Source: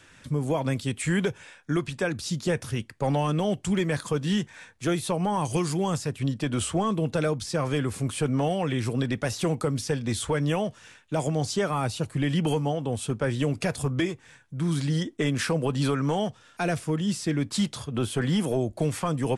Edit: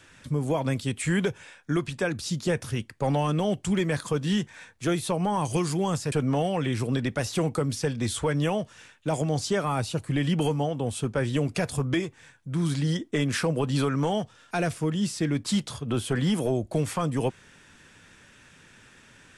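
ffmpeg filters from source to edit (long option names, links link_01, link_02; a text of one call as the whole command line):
ffmpeg -i in.wav -filter_complex "[0:a]asplit=2[link_01][link_02];[link_01]atrim=end=6.122[link_03];[link_02]atrim=start=8.178[link_04];[link_03][link_04]acrossfade=duration=0.004:curve1=hsin:curve2=hsin" out.wav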